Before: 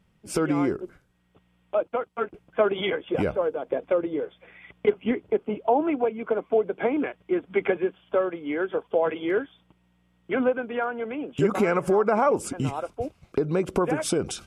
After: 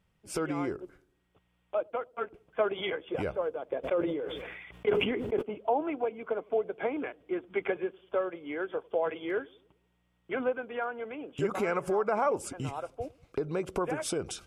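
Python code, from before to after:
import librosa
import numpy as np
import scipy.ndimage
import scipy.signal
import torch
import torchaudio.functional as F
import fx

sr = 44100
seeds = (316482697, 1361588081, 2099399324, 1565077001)

y = fx.peak_eq(x, sr, hz=220.0, db=-6.0, octaves=1.2)
y = fx.echo_wet_lowpass(y, sr, ms=96, feedback_pct=47, hz=500.0, wet_db=-22.5)
y = fx.sustainer(y, sr, db_per_s=33.0, at=(3.83, 5.41), fade=0.02)
y = y * librosa.db_to_amplitude(-5.5)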